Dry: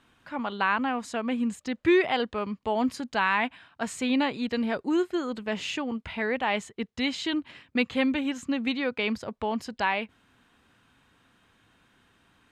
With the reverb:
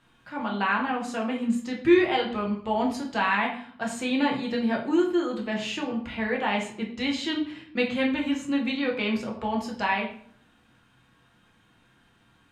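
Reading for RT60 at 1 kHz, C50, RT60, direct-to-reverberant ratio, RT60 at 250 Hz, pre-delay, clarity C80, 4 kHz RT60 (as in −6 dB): 0.55 s, 7.5 dB, 0.55 s, −1.5 dB, 0.85 s, 6 ms, 11.0 dB, 0.45 s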